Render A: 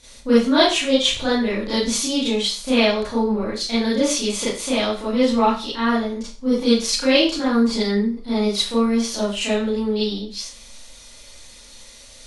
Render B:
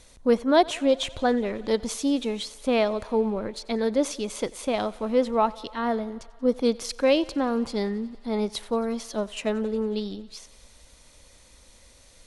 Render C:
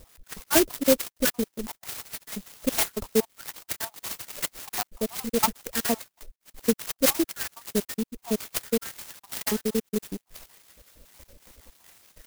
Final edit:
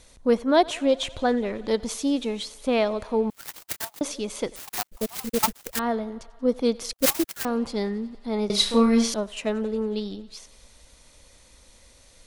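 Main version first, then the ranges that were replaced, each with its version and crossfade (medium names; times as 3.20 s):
B
3.30–4.01 s: from C
4.56–5.79 s: from C
6.93–7.45 s: from C
8.50–9.14 s: from A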